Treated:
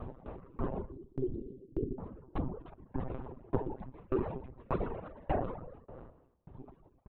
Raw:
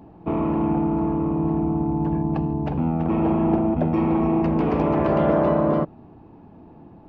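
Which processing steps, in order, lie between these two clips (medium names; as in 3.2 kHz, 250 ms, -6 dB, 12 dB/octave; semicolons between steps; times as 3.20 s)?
noise-vocoded speech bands 12; 0.91–1.99 s: inverse Chebyshev band-stop 830–1900 Hz, stop band 50 dB; 2.60–3.15 s: valve stage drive 16 dB, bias 0.75; feedback delay 246 ms, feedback 26%, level -14 dB; monotone LPC vocoder at 8 kHz 130 Hz; reverb removal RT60 1.5 s; compression 2.5:1, threshold -39 dBFS, peak gain reduction 15.5 dB; sawtooth tremolo in dB decaying 1.7 Hz, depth 30 dB; trim +7.5 dB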